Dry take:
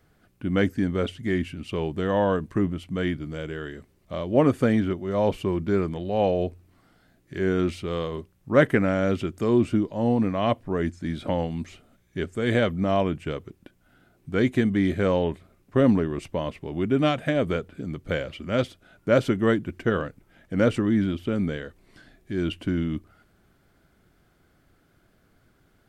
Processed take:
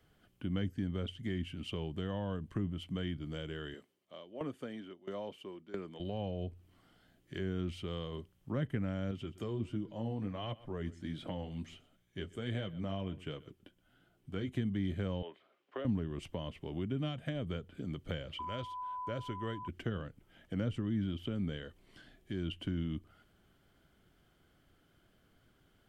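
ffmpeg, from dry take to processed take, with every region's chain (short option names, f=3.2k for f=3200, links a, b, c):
-filter_complex "[0:a]asettb=1/sr,asplit=3[a][b][c];[a]atrim=end=3.744[d];[b]atrim=start=3.74:end=6,asetpts=PTS-STARTPTS,afade=t=in:d=0.004:c=qsin,afade=t=out:st=2.256:d=0.004:c=qsin,highpass=260,aeval=exprs='val(0)*pow(10,-19*if(lt(mod(1.5*n/s,1),2*abs(1.5)/1000),1-mod(1.5*n/s,1)/(2*abs(1.5)/1000),(mod(1.5*n/s,1)-2*abs(1.5)/1000)/(1-2*abs(1.5)/1000))/20)':c=same[e];[c]atrim=start=5.996[f];[d][e]acrossfade=d=0.004:c1=hsin:c2=qsin[g];[g][f]acrossfade=d=0.004:c1=qsin:c2=hsin,asettb=1/sr,asplit=3[h][i][j];[h]atrim=end=9.114[k];[i]atrim=start=9.11:end=14.49,asetpts=PTS-STARTPTS,afade=t=in:d=0.004:c=qsin,afade=t=out:st=5.376:d=0.004:c=qsin,flanger=delay=6:depth=5:regen=-41:speed=1.4:shape=sinusoidal,aecho=1:1:123:0.0794,atrim=end_sample=237258[l];[j]atrim=start=14.486[m];[k][l]acrossfade=d=0.004:c1=hsin:c2=qsin[n];[n][m]acrossfade=d=0.004:c1=qsin:c2=hsin,asettb=1/sr,asplit=3[o][p][q];[o]atrim=end=15.224[r];[p]atrim=start=15.22:end=15.85,asetpts=PTS-STARTPTS,afade=t=in:d=0.004:c=qsin,afade=t=out:st=0.626:d=0.004:c=qsin,highpass=190,acrossover=split=380 4500:gain=0.0794 1 0.0891[s][t][u];[s][t][u]amix=inputs=3:normalize=0[v];[q]atrim=start=15.846[w];[r][v]acrossfade=d=0.004:c1=hsin:c2=qsin[x];[x][w]acrossfade=d=0.004:c1=qsin:c2=hsin,asettb=1/sr,asplit=3[y][z][aa];[y]atrim=end=18.394[ab];[z]atrim=start=18.39:end=19.68,asetpts=PTS-STARTPTS,afade=t=in:d=0.004:c=qsin,afade=t=out:st=1.286:d=0.004:c=qsin,aeval=exprs='val(0)+0.0501*sin(2*PI*1000*n/s)':c=same,equalizer=f=180:t=o:w=1.3:g=-10[ac];[aa]atrim=start=19.676[ad];[ab][ac]acrossfade=d=0.004:c1=hsin:c2=qsin[ae];[ae][ad]acrossfade=d=0.004:c1=qsin:c2=hsin,equalizer=f=3.1k:w=7.5:g=11.5,acrossover=split=180[af][ag];[ag]acompressor=threshold=-33dB:ratio=6[ah];[af][ah]amix=inputs=2:normalize=0,volume=-6.5dB"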